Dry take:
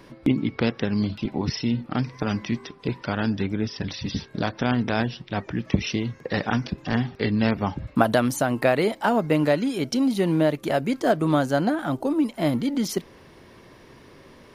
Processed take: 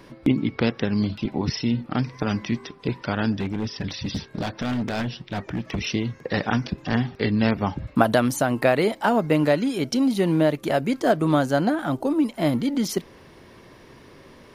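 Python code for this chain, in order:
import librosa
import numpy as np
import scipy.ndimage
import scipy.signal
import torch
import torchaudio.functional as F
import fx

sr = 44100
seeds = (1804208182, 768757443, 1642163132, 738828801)

y = fx.clip_hard(x, sr, threshold_db=-22.5, at=(3.32, 5.87))
y = F.gain(torch.from_numpy(y), 1.0).numpy()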